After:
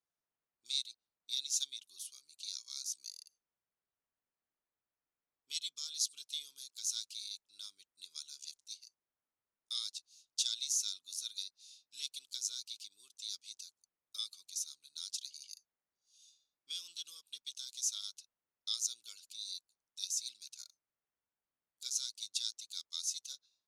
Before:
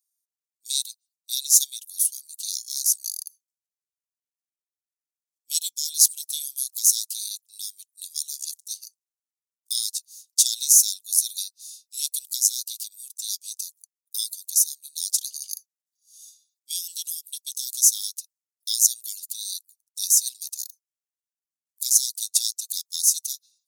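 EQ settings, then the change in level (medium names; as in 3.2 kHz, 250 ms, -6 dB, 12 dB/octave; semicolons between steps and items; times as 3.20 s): low-pass 1.7 kHz 12 dB/octave; +7.5 dB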